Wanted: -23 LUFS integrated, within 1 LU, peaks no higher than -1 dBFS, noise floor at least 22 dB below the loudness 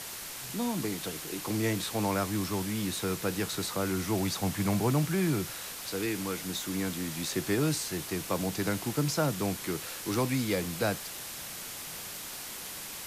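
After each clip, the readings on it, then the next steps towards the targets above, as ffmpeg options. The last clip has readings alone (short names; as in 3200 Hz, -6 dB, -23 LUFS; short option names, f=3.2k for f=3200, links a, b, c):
noise floor -41 dBFS; noise floor target -54 dBFS; loudness -31.5 LUFS; peak -16.5 dBFS; loudness target -23.0 LUFS
-> -af "afftdn=nr=13:nf=-41"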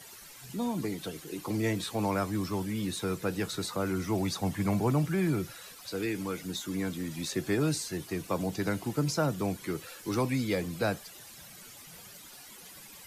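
noise floor -50 dBFS; noise floor target -54 dBFS
-> -af "afftdn=nr=6:nf=-50"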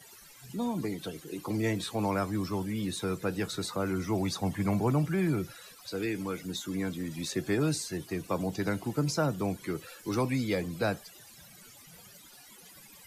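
noise floor -54 dBFS; loudness -32.0 LUFS; peak -17.0 dBFS; loudness target -23.0 LUFS
-> -af "volume=9dB"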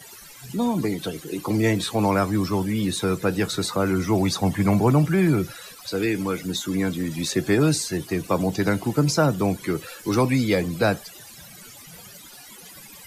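loudness -23.0 LUFS; peak -8.0 dBFS; noise floor -45 dBFS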